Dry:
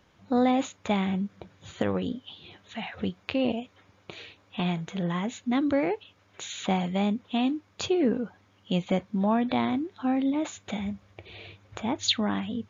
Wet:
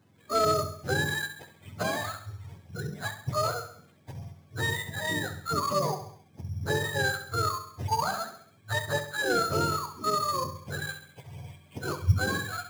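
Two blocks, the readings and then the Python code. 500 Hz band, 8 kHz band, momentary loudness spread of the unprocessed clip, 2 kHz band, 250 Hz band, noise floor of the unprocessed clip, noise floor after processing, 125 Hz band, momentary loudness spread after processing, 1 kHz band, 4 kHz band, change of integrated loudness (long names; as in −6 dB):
−1.5 dB, can't be measured, 19 LU, +7.5 dB, −12.5 dB, −63 dBFS, −59 dBFS, +3.0 dB, 17 LU, +3.0 dB, −1.0 dB, −1.5 dB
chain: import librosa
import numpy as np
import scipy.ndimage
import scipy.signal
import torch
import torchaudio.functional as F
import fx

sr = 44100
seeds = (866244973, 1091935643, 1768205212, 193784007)

p1 = fx.octave_mirror(x, sr, pivot_hz=570.0)
p2 = scipy.signal.sosfilt(scipy.signal.butter(2, 110.0, 'highpass', fs=sr, output='sos'), p1)
p3 = fx.sample_hold(p2, sr, seeds[0], rate_hz=5600.0, jitter_pct=0)
p4 = p3 + fx.echo_feedback(p3, sr, ms=67, feedback_pct=50, wet_db=-10.5, dry=0)
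y = fx.slew_limit(p4, sr, full_power_hz=220.0)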